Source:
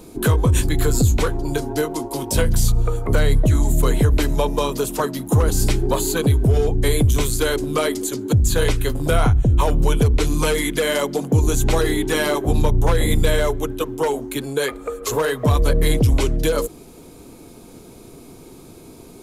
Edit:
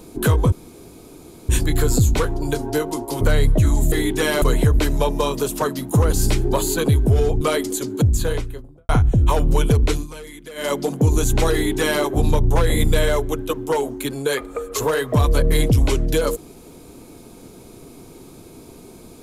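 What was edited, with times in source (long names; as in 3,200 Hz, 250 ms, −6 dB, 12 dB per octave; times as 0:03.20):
0:00.52: splice in room tone 0.97 s
0:02.24–0:03.09: remove
0:06.79–0:07.72: remove
0:08.23–0:09.20: fade out and dull
0:10.21–0:11.03: duck −17 dB, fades 0.17 s
0:11.84–0:12.34: duplicate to 0:03.80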